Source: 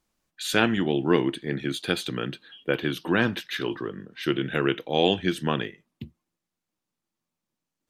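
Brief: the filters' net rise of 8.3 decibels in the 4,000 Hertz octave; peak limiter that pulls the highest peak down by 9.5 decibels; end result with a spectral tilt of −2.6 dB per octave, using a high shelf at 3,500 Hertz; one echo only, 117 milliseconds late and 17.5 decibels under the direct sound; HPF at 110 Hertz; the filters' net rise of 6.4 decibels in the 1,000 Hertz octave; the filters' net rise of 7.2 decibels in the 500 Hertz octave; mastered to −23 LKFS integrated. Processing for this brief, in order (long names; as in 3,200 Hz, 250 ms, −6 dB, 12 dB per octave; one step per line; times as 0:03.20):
high-pass filter 110 Hz
parametric band 500 Hz +8 dB
parametric band 1,000 Hz +5 dB
high-shelf EQ 3,500 Hz +3 dB
parametric band 4,000 Hz +8.5 dB
brickwall limiter −8.5 dBFS
single-tap delay 117 ms −17.5 dB
level +0.5 dB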